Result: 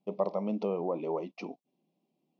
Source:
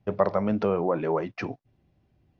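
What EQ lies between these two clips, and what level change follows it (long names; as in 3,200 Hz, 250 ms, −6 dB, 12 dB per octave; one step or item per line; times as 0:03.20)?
linear-phase brick-wall high-pass 160 Hz
Butterworth band-reject 1,600 Hz, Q 1.2
−6.5 dB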